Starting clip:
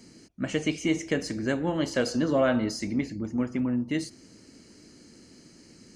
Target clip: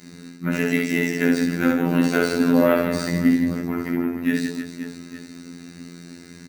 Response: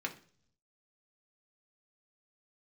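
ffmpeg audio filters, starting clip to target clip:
-filter_complex "[0:a]aecho=1:1:60|150|285|487.5|791.2:0.631|0.398|0.251|0.158|0.1,asplit=2[s0][s1];[s1]acompressor=threshold=0.0158:ratio=6,volume=0.891[s2];[s0][s2]amix=inputs=2:normalize=0,acrusher=samples=3:mix=1:aa=0.000001,asplit=2[s3][s4];[s4]asetrate=66075,aresample=44100,atempo=0.66742,volume=0.178[s5];[s3][s5]amix=inputs=2:normalize=0[s6];[1:a]atrim=start_sample=2205,atrim=end_sample=3969[s7];[s6][s7]afir=irnorm=-1:irlink=0,asetrate=40517,aresample=44100,afftfilt=real='hypot(re,im)*cos(PI*b)':imag='0':win_size=2048:overlap=0.75,volume=1.88"

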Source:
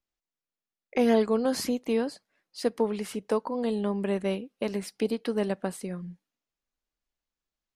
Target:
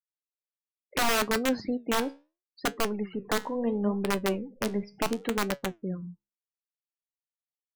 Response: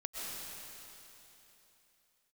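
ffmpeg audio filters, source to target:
-filter_complex "[0:a]asettb=1/sr,asplit=3[s0][s1][s2];[s0]atrim=end=2.694[s3];[s1]atrim=start=2.69:end=5.28,asetpts=PTS-STARTPTS,afade=t=in:d=0.004:c=qsin,afade=t=out:st=2.586:d=0.004:c=qsin,aeval=exprs='val(0)+0.5*0.00891*sgn(val(0))':c=same[s4];[s2]atrim=start=5.276[s5];[s3][s4]acrossfade=d=0.004:c1=hsin:c2=qsin[s6];[s6][s5]acrossfade=d=0.004:c1=qsin:c2=hsin,aemphasis=mode=reproduction:type=75fm,afftfilt=real='re*gte(hypot(re,im),0.0141)':imag='im*gte(hypot(re,im),0.0141)':win_size=1024:overlap=0.75,lowshelf=f=89:g=9,dynaudnorm=f=130:g=7:m=2.99,aeval=exprs='(mod(2.51*val(0)+1,2)-1)/2.51':c=same,flanger=delay=7:depth=7.7:regen=74:speed=0.72:shape=sinusoidal,volume=0.447"

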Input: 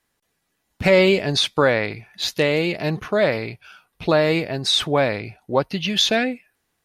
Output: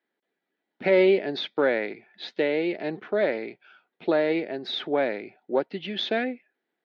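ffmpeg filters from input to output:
-af "aeval=exprs='0.668*(cos(1*acos(clip(val(0)/0.668,-1,1)))-cos(1*PI/2))+0.0335*(cos(4*acos(clip(val(0)/0.668,-1,1)))-cos(4*PI/2))':c=same,highpass=f=220:w=0.5412,highpass=f=220:w=1.3066,equalizer=f=370:t=q:w=4:g=5,equalizer=f=1100:t=q:w=4:g=-10,equalizer=f=2700:t=q:w=4:g=-7,lowpass=f=3300:w=0.5412,lowpass=f=3300:w=1.3066,volume=0.531"

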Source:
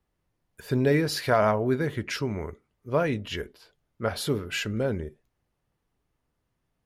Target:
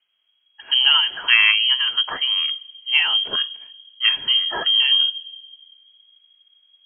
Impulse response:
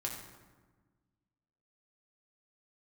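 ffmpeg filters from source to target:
-filter_complex "[0:a]asplit=2[s0][s1];[1:a]atrim=start_sample=2205,lowshelf=f=360:g=12[s2];[s1][s2]afir=irnorm=-1:irlink=0,volume=0.075[s3];[s0][s3]amix=inputs=2:normalize=0,asubboost=boost=9:cutoff=83,aeval=exprs='0.335*(cos(1*acos(clip(val(0)/0.335,-1,1)))-cos(1*PI/2))+0.00841*(cos(7*acos(clip(val(0)/0.335,-1,1)))-cos(7*PI/2))':c=same,lowpass=f=2800:t=q:w=0.5098,lowpass=f=2800:t=q:w=0.6013,lowpass=f=2800:t=q:w=0.9,lowpass=f=2800:t=q:w=2.563,afreqshift=-3300,volume=2.11"

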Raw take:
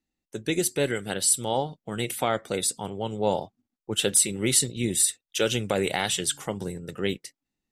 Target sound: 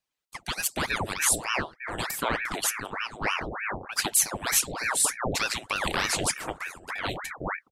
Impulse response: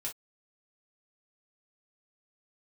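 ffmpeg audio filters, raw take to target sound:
-filter_complex "[0:a]asplit=2[s0][s1];[s1]acompressor=threshold=0.0178:ratio=6,volume=0.891[s2];[s0][s2]amix=inputs=2:normalize=0,acrossover=split=410[s3][s4];[s3]adelay=420[s5];[s5][s4]amix=inputs=2:normalize=0,afreqshift=74,aeval=exprs='val(0)*sin(2*PI*1100*n/s+1100*0.9/3.3*sin(2*PI*3.3*n/s))':c=same"

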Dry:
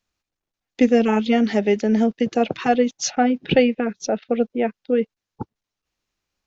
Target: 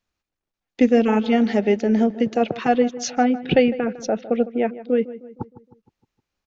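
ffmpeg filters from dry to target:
-filter_complex "[0:a]highshelf=f=4100:g=-6,asplit=2[s0][s1];[s1]adelay=155,lowpass=f=1900:p=1,volume=0.168,asplit=2[s2][s3];[s3]adelay=155,lowpass=f=1900:p=1,volume=0.51,asplit=2[s4][s5];[s5]adelay=155,lowpass=f=1900:p=1,volume=0.51,asplit=2[s6][s7];[s7]adelay=155,lowpass=f=1900:p=1,volume=0.51,asplit=2[s8][s9];[s9]adelay=155,lowpass=f=1900:p=1,volume=0.51[s10];[s0][s2][s4][s6][s8][s10]amix=inputs=6:normalize=0"

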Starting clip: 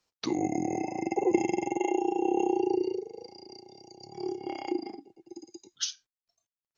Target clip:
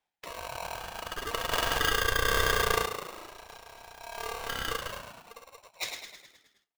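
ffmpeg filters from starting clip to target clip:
-filter_complex "[0:a]dynaudnorm=f=530:g=5:m=4.73,firequalizer=gain_entry='entry(100,0);entry(330,-24);entry(1200,-7);entry(2700,-6);entry(3900,-24)':delay=0.05:min_phase=1,asplit=8[s0][s1][s2][s3][s4][s5][s6][s7];[s1]adelay=105,afreqshift=-51,volume=0.501[s8];[s2]adelay=210,afreqshift=-102,volume=0.282[s9];[s3]adelay=315,afreqshift=-153,volume=0.157[s10];[s4]adelay=420,afreqshift=-204,volume=0.0881[s11];[s5]adelay=525,afreqshift=-255,volume=0.0495[s12];[s6]adelay=630,afreqshift=-306,volume=0.0275[s13];[s7]adelay=735,afreqshift=-357,volume=0.0155[s14];[s0][s8][s9][s10][s11][s12][s13][s14]amix=inputs=8:normalize=0,asettb=1/sr,asplit=3[s15][s16][s17];[s15]atrim=end=1.514[s18];[s16]atrim=start=1.51:end=2.86,asetpts=PTS-STARTPTS,afade=t=in:d=0.004:c=qsin,afade=t=out:st=1.346:d=0.004:c=qsin,acontrast=38[s19];[s17]atrim=start=2.856[s20];[s18][s19]acrossfade=d=0.004:c1=hsin:c2=qsin[s21];[s21][s20]acrossfade=d=0.004:c1=qsin:c2=hsin,aeval=exprs='val(0)*sgn(sin(2*PI*810*n/s))':c=same,volume=1.68"

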